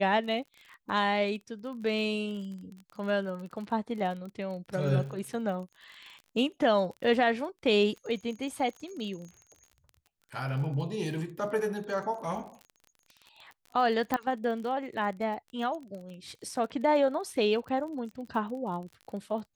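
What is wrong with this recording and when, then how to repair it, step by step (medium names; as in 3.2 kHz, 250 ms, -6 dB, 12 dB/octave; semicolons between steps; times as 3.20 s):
crackle 34 per s -39 dBFS
14.14 s: pop -14 dBFS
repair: de-click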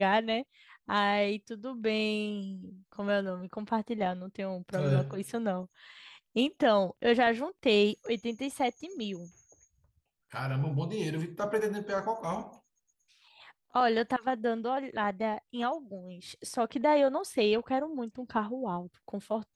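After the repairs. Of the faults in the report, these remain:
14.14 s: pop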